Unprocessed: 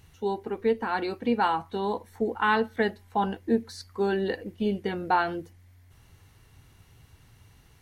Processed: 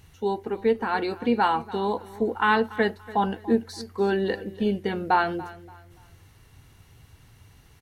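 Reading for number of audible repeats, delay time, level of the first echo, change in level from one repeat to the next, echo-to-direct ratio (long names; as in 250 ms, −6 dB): 2, 287 ms, −18.5 dB, −10.5 dB, −18.0 dB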